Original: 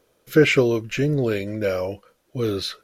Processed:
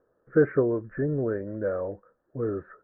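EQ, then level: rippled Chebyshev low-pass 1.8 kHz, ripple 3 dB; -4.5 dB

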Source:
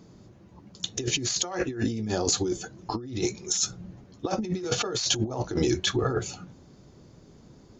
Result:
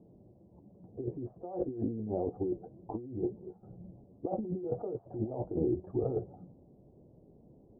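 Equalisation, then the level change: steep low-pass 730 Hz 36 dB/octave; distance through air 370 m; bass shelf 360 Hz -8.5 dB; 0.0 dB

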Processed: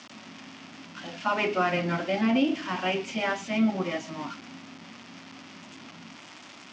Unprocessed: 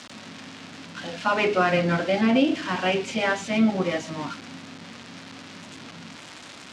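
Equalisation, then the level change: cabinet simulation 130–6600 Hz, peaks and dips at 150 Hz -4 dB, 480 Hz -8 dB, 1.6 kHz -4 dB, 4 kHz -6 dB; -2.5 dB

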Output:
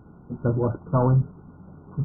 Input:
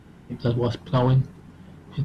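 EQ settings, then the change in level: brick-wall FIR low-pass 1.5 kHz; 0.0 dB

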